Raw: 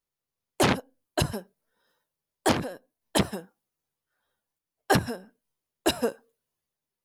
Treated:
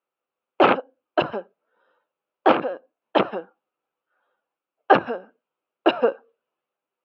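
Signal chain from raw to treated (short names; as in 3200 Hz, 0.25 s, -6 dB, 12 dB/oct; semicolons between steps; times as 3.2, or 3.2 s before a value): speaker cabinet 320–2700 Hz, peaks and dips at 330 Hz +4 dB, 530 Hz +6 dB, 780 Hz +4 dB, 1300 Hz +8 dB, 1900 Hz -7 dB, 2700 Hz +5 dB; gain +5 dB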